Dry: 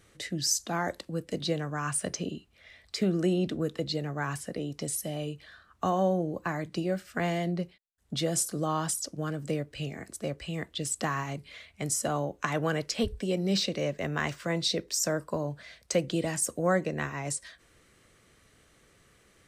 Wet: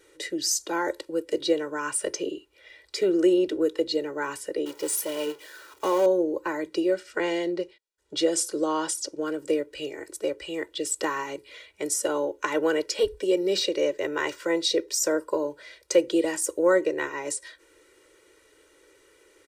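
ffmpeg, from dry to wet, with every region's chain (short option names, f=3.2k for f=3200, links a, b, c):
-filter_complex "[0:a]asettb=1/sr,asplit=3[a][b][c];[a]atrim=end=4.654[d];[b]atrim=start=4.65:end=6.06,asetpts=PTS-STARTPTS,afade=t=in:d=0.004:c=qsin,afade=t=out:st=1.406:d=0.004:c=qsin,aeval=exprs='val(0)+0.5*0.0237*sgn(val(0))':c=same,highpass=f=200:p=1,agate=range=-33dB:threshold=-31dB:ratio=3:release=100:detection=peak[e];[c]atrim=start=6.056[f];[d][e]acrossfade=d=0.004:c1=hsin:c2=qsin[g];[g][f]acrossfade=d=0.004:c1=qsin:c2=hsin,asettb=1/sr,asplit=3[h][i][j];[h]atrim=end=6.944[k];[i]atrim=start=6.94:end=9.26,asetpts=PTS-STARTPTS,afade=t=in:d=0.004:c=qsin,afade=t=out:st=2.316:d=0.004:c=qsin,lowpass=7k,highshelf=f=4.6k:g=5[l];[j]atrim=start=9.256[m];[k][l]acrossfade=d=0.004:c1=hsin:c2=qsin[n];[n][m]acrossfade=d=0.004:c1=qsin:c2=hsin,lowshelf=f=210:t=q:w=3:g=-12.5,aecho=1:1:2.1:0.94"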